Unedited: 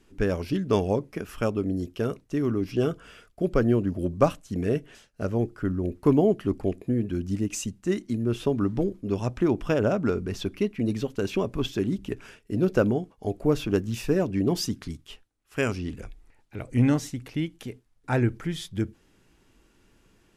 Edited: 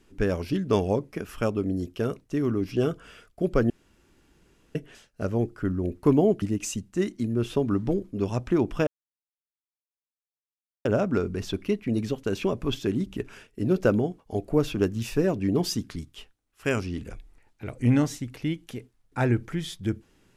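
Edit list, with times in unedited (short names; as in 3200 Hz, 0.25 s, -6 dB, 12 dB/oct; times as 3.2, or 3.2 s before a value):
3.7–4.75 room tone
6.42–7.32 cut
9.77 insert silence 1.98 s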